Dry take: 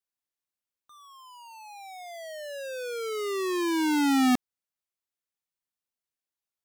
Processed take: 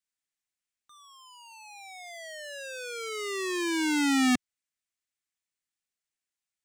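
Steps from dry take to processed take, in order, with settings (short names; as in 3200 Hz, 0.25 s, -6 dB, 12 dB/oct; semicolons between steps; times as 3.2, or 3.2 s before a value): ten-band EQ 125 Hz -3 dB, 500 Hz -6 dB, 1000 Hz -5 dB, 2000 Hz +5 dB, 8000 Hz +8 dB, 16000 Hz -10 dB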